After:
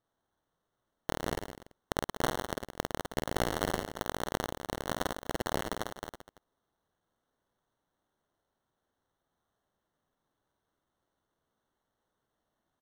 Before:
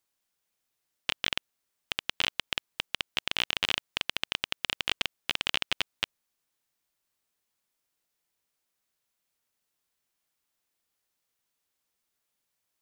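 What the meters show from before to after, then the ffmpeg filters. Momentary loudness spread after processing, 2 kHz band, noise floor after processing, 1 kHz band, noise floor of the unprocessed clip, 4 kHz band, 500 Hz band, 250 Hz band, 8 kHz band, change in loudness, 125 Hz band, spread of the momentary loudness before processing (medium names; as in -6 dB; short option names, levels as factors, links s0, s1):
10 LU, -7.5 dB, -84 dBFS, +5.5 dB, -82 dBFS, -13.5 dB, +10.5 dB, +10.5 dB, +0.5 dB, -4.5 dB, +10.0 dB, 7 LU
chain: -af "acrusher=samples=18:mix=1:aa=0.000001,aecho=1:1:50|107.5|173.6|249.7|337.1:0.631|0.398|0.251|0.158|0.1,volume=0.631"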